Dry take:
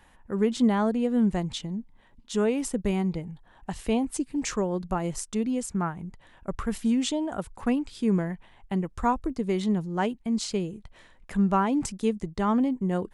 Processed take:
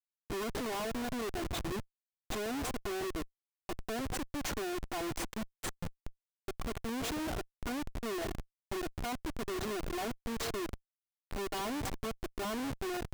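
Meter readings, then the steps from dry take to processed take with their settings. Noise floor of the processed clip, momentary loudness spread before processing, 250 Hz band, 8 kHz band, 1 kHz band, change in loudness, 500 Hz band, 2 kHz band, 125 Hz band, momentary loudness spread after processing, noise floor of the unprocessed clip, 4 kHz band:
below −85 dBFS, 12 LU, −14.5 dB, −6.0 dB, −9.0 dB, −11.0 dB, −9.0 dB, −2.5 dB, −12.5 dB, 8 LU, −57 dBFS, −3.5 dB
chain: lower of the sound and its delayed copy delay 2.8 ms
time-frequency box erased 0:05.29–0:06.05, 220–1,800 Hz
reverb reduction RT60 1.2 s
parametric band 2,500 Hz −2.5 dB 0.61 octaves
downward compressor 2.5 to 1, threshold −28 dBFS, peak gain reduction 6.5 dB
wave folding −28.5 dBFS
echo through a band-pass that steps 149 ms, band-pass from 570 Hz, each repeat 0.7 octaves, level −7 dB
comparator with hysteresis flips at −36 dBFS

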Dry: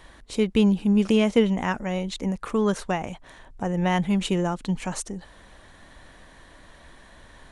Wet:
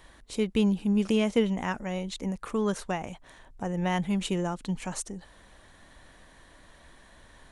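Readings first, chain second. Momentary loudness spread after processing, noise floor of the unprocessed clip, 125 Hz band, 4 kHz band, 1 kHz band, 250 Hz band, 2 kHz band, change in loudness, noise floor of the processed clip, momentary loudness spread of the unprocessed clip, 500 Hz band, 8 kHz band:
13 LU, −51 dBFS, −5.0 dB, −4.5 dB, −5.0 dB, −5.0 dB, −4.5 dB, −5.0 dB, −56 dBFS, 13 LU, −5.0 dB, −2.5 dB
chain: high-shelf EQ 7,800 Hz +5.5 dB
level −5 dB

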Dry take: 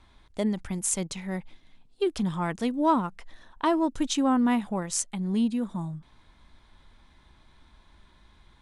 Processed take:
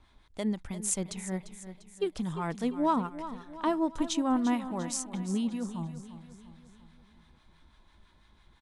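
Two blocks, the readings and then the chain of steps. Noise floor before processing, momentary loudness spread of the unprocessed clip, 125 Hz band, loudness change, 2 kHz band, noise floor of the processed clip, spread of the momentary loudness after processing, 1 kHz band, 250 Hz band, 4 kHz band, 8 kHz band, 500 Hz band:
−59 dBFS, 12 LU, −4.0 dB, −4.0 dB, −5.5 dB, −63 dBFS, 18 LU, −4.0 dB, −4.0 dB, −4.5 dB, −4.0 dB, −4.0 dB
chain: two-band tremolo in antiphase 6 Hz, depth 50%, crossover 890 Hz
on a send: repeating echo 347 ms, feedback 51%, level −13 dB
on the sum: level −2 dB

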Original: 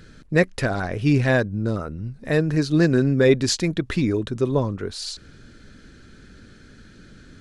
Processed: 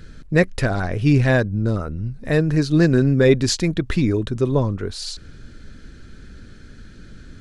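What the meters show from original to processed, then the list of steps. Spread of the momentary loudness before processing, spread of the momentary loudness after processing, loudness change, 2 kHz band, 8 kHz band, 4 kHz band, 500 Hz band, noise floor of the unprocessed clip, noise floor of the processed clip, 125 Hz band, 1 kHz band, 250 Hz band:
12 LU, 13 LU, +2.5 dB, +1.0 dB, +1.0 dB, +1.0 dB, +1.5 dB, −48 dBFS, −42 dBFS, +4.0 dB, +1.0 dB, +2.0 dB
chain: low-shelf EQ 83 Hz +10.5 dB
level +1 dB

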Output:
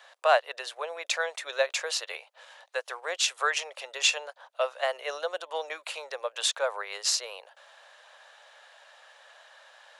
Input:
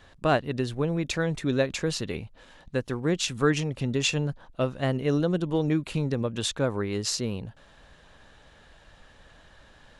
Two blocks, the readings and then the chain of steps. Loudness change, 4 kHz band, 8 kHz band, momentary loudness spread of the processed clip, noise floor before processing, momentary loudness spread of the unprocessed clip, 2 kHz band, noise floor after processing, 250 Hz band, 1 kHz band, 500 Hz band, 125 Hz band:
−2.0 dB, +3.0 dB, +3.0 dB, 12 LU, −55 dBFS, 8 LU, +3.0 dB, −64 dBFS, below −35 dB, +3.0 dB, −3.0 dB, below −40 dB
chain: Butterworth high-pass 550 Hz 48 dB per octave
level +3 dB

